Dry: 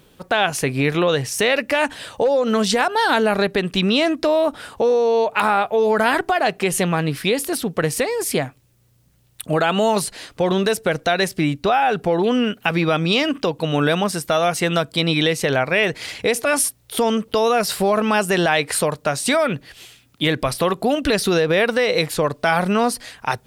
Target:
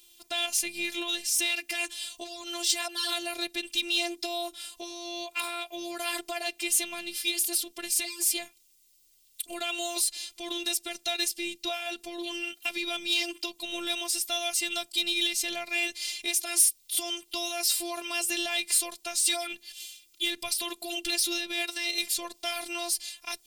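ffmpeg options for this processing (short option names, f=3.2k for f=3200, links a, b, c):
-af "aexciter=amount=4.1:drive=9.7:freq=2.3k,afftfilt=real='hypot(re,im)*cos(PI*b)':imag='0':win_size=512:overlap=0.75,volume=-15.5dB"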